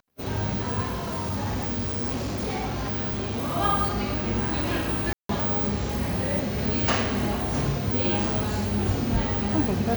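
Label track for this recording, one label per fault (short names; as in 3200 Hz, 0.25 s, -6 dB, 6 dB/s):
0.910000	3.570000	clipped -24.5 dBFS
5.130000	5.290000	gap 0.163 s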